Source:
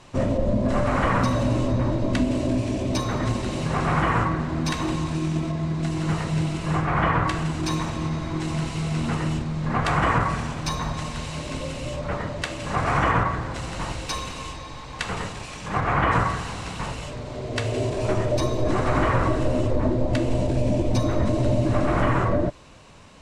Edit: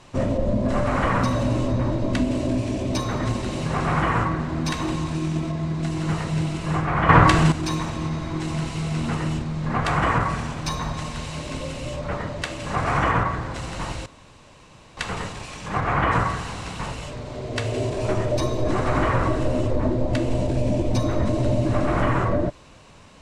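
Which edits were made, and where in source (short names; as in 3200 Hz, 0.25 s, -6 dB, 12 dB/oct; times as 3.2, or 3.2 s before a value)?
7.09–7.52 gain +9 dB
14.06–14.97 room tone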